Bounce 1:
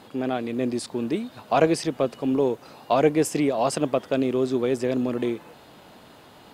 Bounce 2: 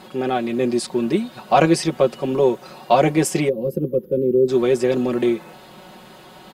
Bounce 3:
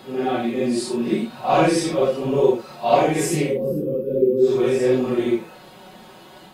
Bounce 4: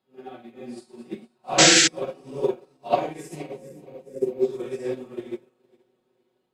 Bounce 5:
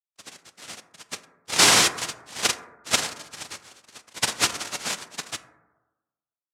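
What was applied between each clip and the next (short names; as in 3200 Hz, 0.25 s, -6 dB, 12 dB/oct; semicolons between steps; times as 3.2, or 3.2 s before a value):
spectral gain 3.49–4.49, 540–11000 Hz -30 dB; comb 5.4 ms, depth 79%; gain +4 dB
phase scrambler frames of 0.2 s; gain -1 dB
regenerating reverse delay 0.231 s, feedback 77%, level -13 dB; painted sound noise, 1.58–1.88, 1300–8000 Hz -12 dBFS; upward expander 2.5:1, over -32 dBFS; gain -2 dB
crossover distortion -45 dBFS; noise vocoder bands 1; plate-style reverb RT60 1.1 s, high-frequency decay 0.25×, DRR 10.5 dB; gain -1 dB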